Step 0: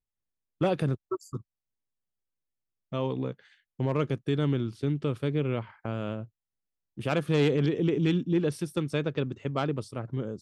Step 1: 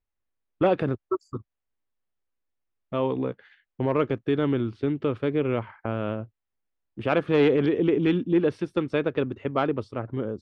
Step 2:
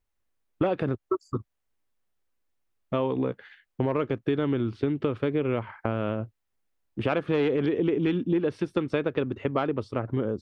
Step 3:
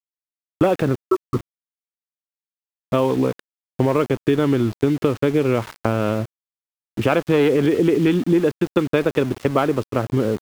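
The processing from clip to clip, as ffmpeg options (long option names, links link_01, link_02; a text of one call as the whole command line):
ffmpeg -i in.wav -af "lowpass=2500,equalizer=frequency=150:width_type=o:width=0.66:gain=-10,volume=6dB" out.wav
ffmpeg -i in.wav -af "acompressor=threshold=-28dB:ratio=4,volume=5dB" out.wav
ffmpeg -i in.wav -af "aeval=exprs='val(0)*gte(abs(val(0)),0.0119)':channel_layout=same,volume=8dB" out.wav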